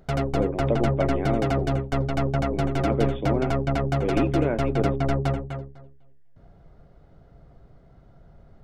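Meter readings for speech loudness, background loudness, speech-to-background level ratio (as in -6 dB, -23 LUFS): -29.0 LUFS, -26.0 LUFS, -3.0 dB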